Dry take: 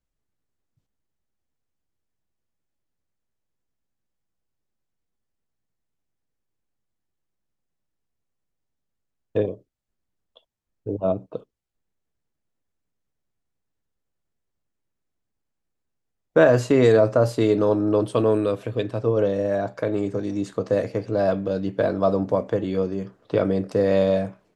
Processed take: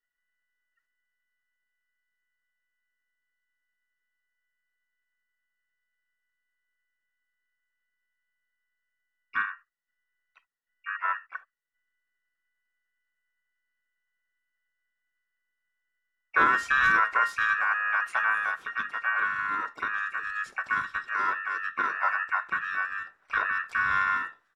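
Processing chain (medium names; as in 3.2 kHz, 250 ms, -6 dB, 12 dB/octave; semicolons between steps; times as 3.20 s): every band turned upside down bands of 2 kHz; harmony voices -5 st -5 dB, +7 st -15 dB; trim -8 dB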